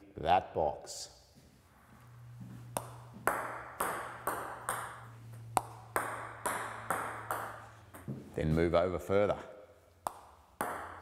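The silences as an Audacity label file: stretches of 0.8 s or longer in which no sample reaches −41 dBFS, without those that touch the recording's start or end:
1.050000	2.410000	silence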